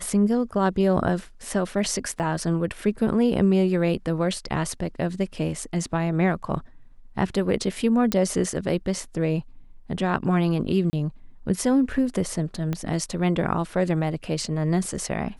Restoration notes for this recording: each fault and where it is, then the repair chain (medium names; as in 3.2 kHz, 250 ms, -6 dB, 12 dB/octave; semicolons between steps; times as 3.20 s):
2.19–2.20 s: dropout 8.5 ms
8.12 s: pop -8 dBFS
10.90–10.93 s: dropout 30 ms
12.73 s: pop -15 dBFS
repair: de-click; interpolate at 2.19 s, 8.5 ms; interpolate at 10.90 s, 30 ms